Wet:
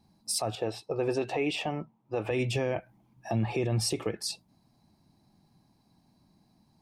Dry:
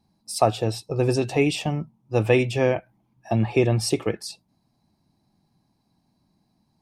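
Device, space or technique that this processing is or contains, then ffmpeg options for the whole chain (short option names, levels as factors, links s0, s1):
stacked limiters: -filter_complex "[0:a]asettb=1/sr,asplit=3[s0][s1][s2];[s0]atrim=end=0.554[s3];[s1]atrim=start=0.55:end=2.31,asetpts=PTS-STARTPTS,afade=t=in:d=0.004:c=qsin,afade=t=out:st=1.756:d=0.004:c=qsin,bass=f=250:g=-13,treble=f=4000:g=-13[s4];[s2]atrim=start=2.306[s5];[s3][s4]acrossfade=d=0.004:c1=hsin:c2=qsin[s6];[s6][s5]acrossfade=d=0.004:c1=qsin:c2=hsin,alimiter=limit=0.316:level=0:latency=1:release=400,alimiter=limit=0.15:level=0:latency=1:release=90,alimiter=limit=0.0794:level=0:latency=1:release=212,volume=1.33"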